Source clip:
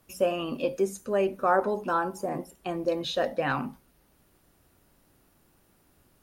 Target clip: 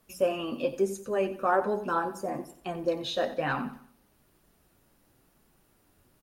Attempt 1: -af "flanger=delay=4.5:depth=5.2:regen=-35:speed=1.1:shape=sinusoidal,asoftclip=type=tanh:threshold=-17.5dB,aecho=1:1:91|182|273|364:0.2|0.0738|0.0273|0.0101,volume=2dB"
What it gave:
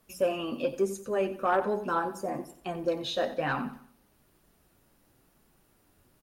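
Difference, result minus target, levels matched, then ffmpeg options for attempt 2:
soft clipping: distortion +15 dB
-af "flanger=delay=4.5:depth=5.2:regen=-35:speed=1.1:shape=sinusoidal,asoftclip=type=tanh:threshold=-9dB,aecho=1:1:91|182|273|364:0.2|0.0738|0.0273|0.0101,volume=2dB"

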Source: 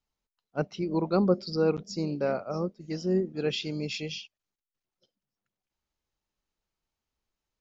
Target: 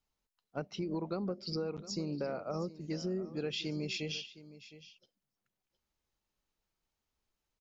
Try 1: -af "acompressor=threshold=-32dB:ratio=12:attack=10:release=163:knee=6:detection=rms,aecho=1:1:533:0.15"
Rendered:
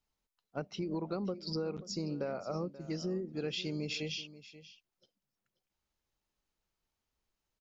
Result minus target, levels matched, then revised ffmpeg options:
echo 180 ms early
-af "acompressor=threshold=-32dB:ratio=12:attack=10:release=163:knee=6:detection=rms,aecho=1:1:713:0.15"

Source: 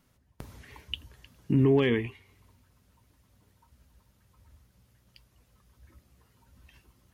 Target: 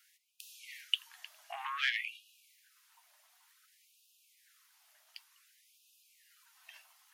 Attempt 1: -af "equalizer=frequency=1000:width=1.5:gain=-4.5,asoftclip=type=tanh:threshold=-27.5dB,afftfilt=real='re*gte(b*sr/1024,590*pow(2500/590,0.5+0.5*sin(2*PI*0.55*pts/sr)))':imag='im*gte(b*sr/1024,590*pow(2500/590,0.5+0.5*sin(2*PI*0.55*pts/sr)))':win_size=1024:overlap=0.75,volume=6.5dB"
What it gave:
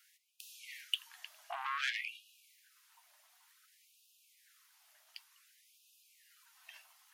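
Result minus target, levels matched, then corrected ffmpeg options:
soft clipping: distortion +6 dB
-af "equalizer=frequency=1000:width=1.5:gain=-4.5,asoftclip=type=tanh:threshold=-20.5dB,afftfilt=real='re*gte(b*sr/1024,590*pow(2500/590,0.5+0.5*sin(2*PI*0.55*pts/sr)))':imag='im*gte(b*sr/1024,590*pow(2500/590,0.5+0.5*sin(2*PI*0.55*pts/sr)))':win_size=1024:overlap=0.75,volume=6.5dB"

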